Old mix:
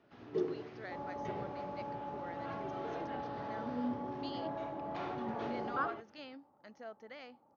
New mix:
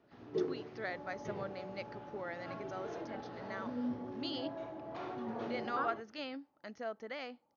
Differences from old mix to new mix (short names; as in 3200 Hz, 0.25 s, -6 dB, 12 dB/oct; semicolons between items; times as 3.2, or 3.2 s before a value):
speech +7.0 dB; first sound: add bell 2400 Hz -4 dB 2.2 oct; second sound -9.5 dB